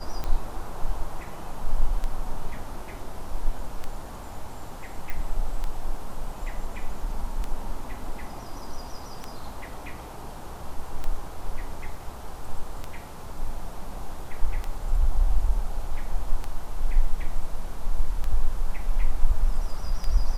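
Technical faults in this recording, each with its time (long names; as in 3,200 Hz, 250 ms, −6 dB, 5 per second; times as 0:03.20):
scratch tick 33 1/3 rpm −17 dBFS
0:05.10: click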